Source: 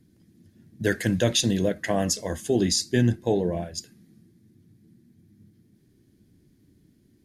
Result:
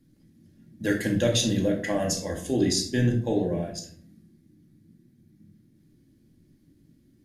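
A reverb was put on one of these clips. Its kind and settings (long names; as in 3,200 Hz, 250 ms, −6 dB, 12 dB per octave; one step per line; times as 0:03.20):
rectangular room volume 670 cubic metres, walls furnished, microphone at 2.3 metres
level −4.5 dB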